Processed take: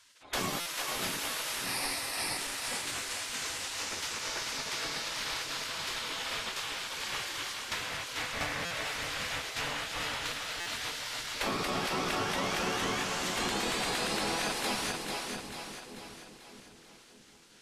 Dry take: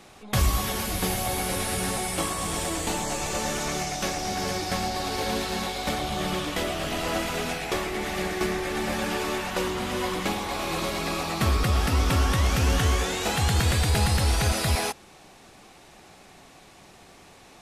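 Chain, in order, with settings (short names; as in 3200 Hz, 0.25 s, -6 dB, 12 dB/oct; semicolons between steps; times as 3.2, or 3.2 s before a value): 1.64–2.37 ripple EQ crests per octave 0.89, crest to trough 17 dB; spectral gate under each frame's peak -15 dB weak; high shelf 8400 Hz -11 dB; split-band echo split 460 Hz, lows 0.614 s, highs 0.441 s, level -6 dB; compressor, threshold -28 dBFS, peak gain reduction 4 dB; stuck buffer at 0.6/8.65/10.6, samples 256, times 9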